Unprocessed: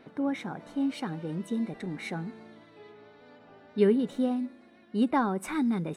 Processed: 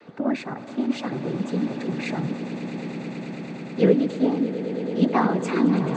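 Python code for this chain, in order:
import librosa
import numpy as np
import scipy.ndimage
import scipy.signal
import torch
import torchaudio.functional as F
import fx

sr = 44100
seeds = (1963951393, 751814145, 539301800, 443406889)

y = fx.noise_vocoder(x, sr, seeds[0], bands=16)
y = fx.echo_swell(y, sr, ms=109, loudest=8, wet_db=-15)
y = y * 10.0 ** (5.5 / 20.0)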